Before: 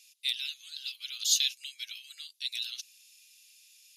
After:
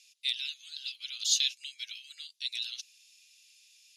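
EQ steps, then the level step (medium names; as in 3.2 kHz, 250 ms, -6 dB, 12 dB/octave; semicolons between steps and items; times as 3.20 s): high-pass 1.3 kHz 12 dB/octave; low-pass 7.6 kHz 12 dB/octave; 0.0 dB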